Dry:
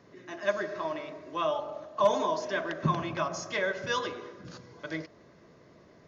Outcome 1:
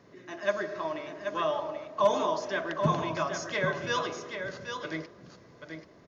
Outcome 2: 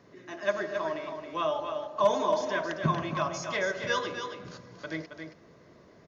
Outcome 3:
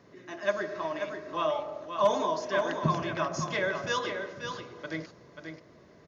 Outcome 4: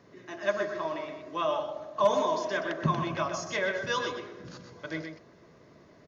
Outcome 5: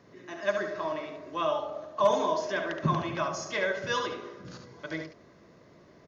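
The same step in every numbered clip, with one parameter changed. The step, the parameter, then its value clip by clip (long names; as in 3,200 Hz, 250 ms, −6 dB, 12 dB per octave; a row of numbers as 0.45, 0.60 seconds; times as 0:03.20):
single-tap delay, delay time: 783, 272, 535, 125, 71 milliseconds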